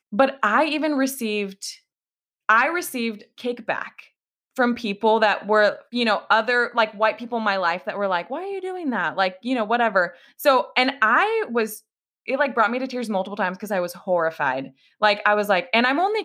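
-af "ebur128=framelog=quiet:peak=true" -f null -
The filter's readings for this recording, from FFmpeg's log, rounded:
Integrated loudness:
  I:         -21.8 LUFS
  Threshold: -32.1 LUFS
Loudness range:
  LRA:         3.7 LU
  Threshold: -42.4 LUFS
  LRA low:   -24.5 LUFS
  LRA high:  -20.8 LUFS
True peak:
  Peak:       -3.3 dBFS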